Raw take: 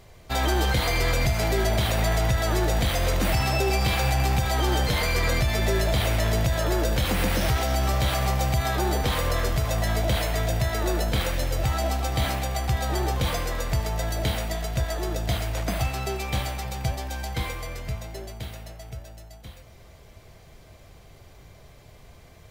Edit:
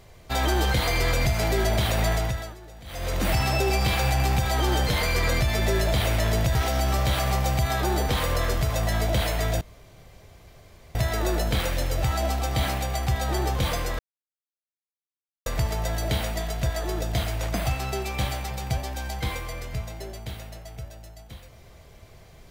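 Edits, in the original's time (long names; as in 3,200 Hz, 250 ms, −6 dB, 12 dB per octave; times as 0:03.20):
0:02.09–0:03.30: duck −21.5 dB, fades 0.46 s
0:06.55–0:07.50: remove
0:10.56: splice in room tone 1.34 s
0:13.60: splice in silence 1.47 s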